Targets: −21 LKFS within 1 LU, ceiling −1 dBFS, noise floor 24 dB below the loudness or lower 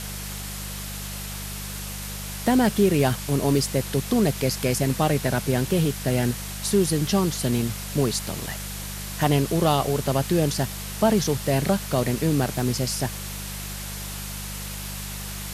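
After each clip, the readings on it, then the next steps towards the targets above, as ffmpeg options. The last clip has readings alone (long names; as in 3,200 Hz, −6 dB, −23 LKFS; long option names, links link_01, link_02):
mains hum 50 Hz; hum harmonics up to 200 Hz; level of the hum −34 dBFS; background noise floor −34 dBFS; target noise floor −49 dBFS; integrated loudness −24.5 LKFS; sample peak −6.5 dBFS; target loudness −21.0 LKFS
→ -af "bandreject=frequency=50:width_type=h:width=4,bandreject=frequency=100:width_type=h:width=4,bandreject=frequency=150:width_type=h:width=4,bandreject=frequency=200:width_type=h:width=4"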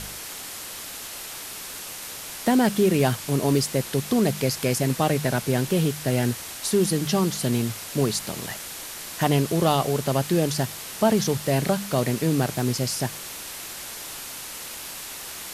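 mains hum none found; background noise floor −37 dBFS; target noise floor −49 dBFS
→ -af "afftdn=noise_reduction=12:noise_floor=-37"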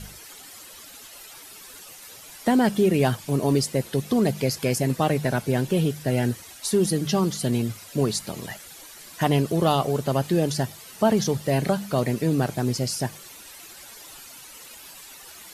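background noise floor −45 dBFS; target noise floor −48 dBFS
→ -af "afftdn=noise_reduction=6:noise_floor=-45"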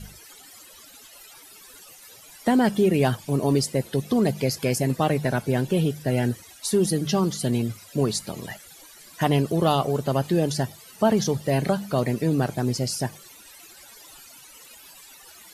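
background noise floor −48 dBFS; integrated loudness −24.0 LKFS; sample peak −6.5 dBFS; target loudness −21.0 LKFS
→ -af "volume=3dB"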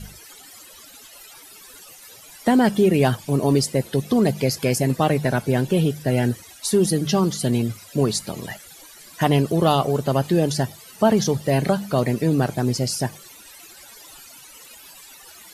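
integrated loudness −21.0 LKFS; sample peak −3.5 dBFS; background noise floor −45 dBFS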